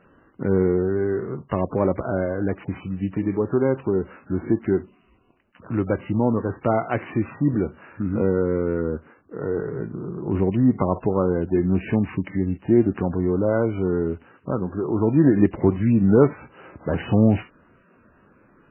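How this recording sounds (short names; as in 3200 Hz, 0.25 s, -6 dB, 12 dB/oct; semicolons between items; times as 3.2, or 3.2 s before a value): a buzz of ramps at a fixed pitch in blocks of 8 samples; MP3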